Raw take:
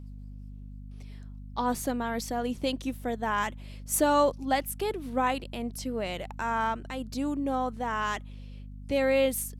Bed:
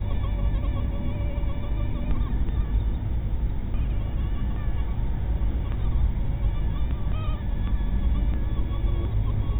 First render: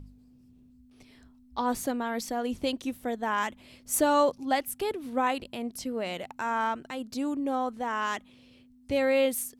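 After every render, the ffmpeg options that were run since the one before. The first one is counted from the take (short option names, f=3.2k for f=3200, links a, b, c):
-af "bandreject=f=50:t=h:w=4,bandreject=f=100:t=h:w=4,bandreject=f=150:t=h:w=4,bandreject=f=200:t=h:w=4"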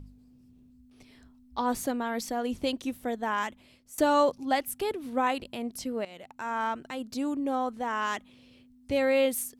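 -filter_complex "[0:a]asplit=3[a][b][c];[a]atrim=end=3.98,asetpts=PTS-STARTPTS,afade=t=out:st=3.06:d=0.92:c=qsin:silence=0.0707946[d];[b]atrim=start=3.98:end=6.05,asetpts=PTS-STARTPTS,afade=t=in:d=0.004:c=hsin:silence=0.0707946,afade=t=out:st=2.066:d=0.004:c=hsin:silence=0.149624[e];[c]atrim=start=6.05,asetpts=PTS-STARTPTS,afade=t=in:d=1:c=qsin:silence=0.149624[f];[d][e][f]concat=n=3:v=0:a=1"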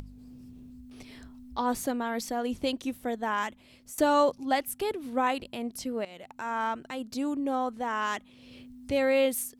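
-af "acompressor=mode=upward:threshold=-38dB:ratio=2.5"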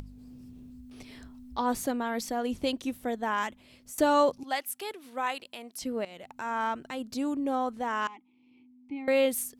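-filter_complex "[0:a]asettb=1/sr,asplit=3[a][b][c];[a]atrim=end=4.434[d];[b]atrim=start=4.43:end=5.82,asetpts=PTS-STARTPTS,afade=t=in:d=0.004:c=qsin,afade=t=out:st=1.386:d=0.004:c=qsin,highpass=f=1.1k:p=1[e];[c]atrim=start=5.816[f];[d][e]acrossfade=d=0.004:c1=hsin:c2=qsin[g];[g][f]acrossfade=d=0.004:c1=qsin:c2=hsin,asettb=1/sr,asplit=3[h][i][j];[h]atrim=end=8.074[k];[i]atrim=start=8.07:end=9.08,asetpts=PTS-STARTPTS,afade=t=in:d=0.004:c=qsin,afade=t=out:st=1.006:d=0.004:c=qsin,asplit=3[l][m][n];[l]bandpass=f=300:t=q:w=8,volume=0dB[o];[m]bandpass=f=870:t=q:w=8,volume=-6dB[p];[n]bandpass=f=2.24k:t=q:w=8,volume=-9dB[q];[o][p][q]amix=inputs=3:normalize=0[r];[j]atrim=start=9.076[s];[k][r]acrossfade=d=0.004:c1=hsin:c2=qsin[t];[t][s]acrossfade=d=0.004:c1=qsin:c2=hsin"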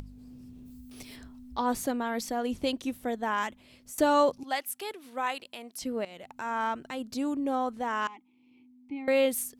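-filter_complex "[0:a]asplit=3[a][b][c];[a]afade=t=out:st=0.65:d=0.02[d];[b]aemphasis=mode=production:type=50kf,afade=t=in:st=0.65:d=0.02,afade=t=out:st=1.15:d=0.02[e];[c]afade=t=in:st=1.15:d=0.02[f];[d][e][f]amix=inputs=3:normalize=0"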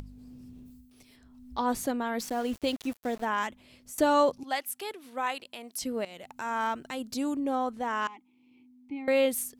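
-filter_complex "[0:a]asettb=1/sr,asplit=3[a][b][c];[a]atrim=end=2.204[d];[b]atrim=start=2.2:end=3.25,asetpts=PTS-STARTPTS,afade=t=in:d=0.004:c=qsin,afade=t=out:st=1.046:d=0.004:c=qsin,aeval=exprs='val(0)*gte(abs(val(0)),0.00841)':c=same[e];[c]atrim=start=3.246[f];[d][e]acrossfade=d=0.004:c1=hsin:c2=qsin[g];[g][f]acrossfade=d=0.004:c1=qsin:c2=hsin,asettb=1/sr,asplit=3[h][i][j];[h]atrim=end=5.634[k];[i]atrim=start=5.63:end=7.4,asetpts=PTS-STARTPTS,afade=t=in:d=0.004:c=qsin,afade=t=out:st=1.766:d=0.004:c=qsin,highshelf=f=4.4k:g=6[l];[j]atrim=start=7.396[m];[k][l]acrossfade=d=0.004:c1=hsin:c2=qsin[n];[n][m]acrossfade=d=0.004:c1=qsin:c2=hsin,asplit=3[o][p][q];[o]atrim=end=0.9,asetpts=PTS-STARTPTS,afade=t=out:st=0.59:d=0.31:silence=0.266073[r];[p]atrim=start=0.9:end=1.22,asetpts=PTS-STARTPTS,volume=-11.5dB[s];[q]atrim=start=1.22,asetpts=PTS-STARTPTS,afade=t=in:d=0.31:silence=0.266073[t];[r][s][t]concat=n=3:v=0:a=1"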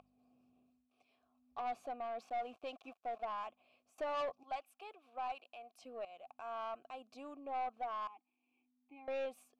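-filter_complex "[0:a]asplit=3[a][b][c];[a]bandpass=f=730:t=q:w=8,volume=0dB[d];[b]bandpass=f=1.09k:t=q:w=8,volume=-6dB[e];[c]bandpass=f=2.44k:t=q:w=8,volume=-9dB[f];[d][e][f]amix=inputs=3:normalize=0,aeval=exprs='(tanh(50.1*val(0)+0.15)-tanh(0.15))/50.1':c=same"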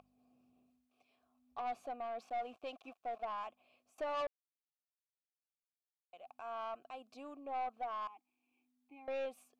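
-filter_complex "[0:a]asplit=3[a][b][c];[a]atrim=end=4.27,asetpts=PTS-STARTPTS,afade=t=out:st=4.266:d=0.004:c=hsin[d];[b]atrim=start=4.27:end=6.13,asetpts=PTS-STARTPTS,volume=0[e];[c]atrim=start=6.13,asetpts=PTS-STARTPTS,afade=t=in:d=0.004:c=hsin[f];[d][e][f]concat=n=3:v=0:a=1"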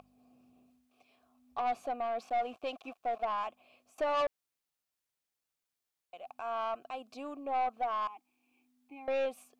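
-af "volume=7.5dB"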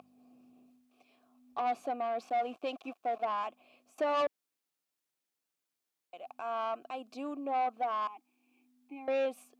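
-af "highpass=130,equalizer=f=300:w=1.7:g=5.5"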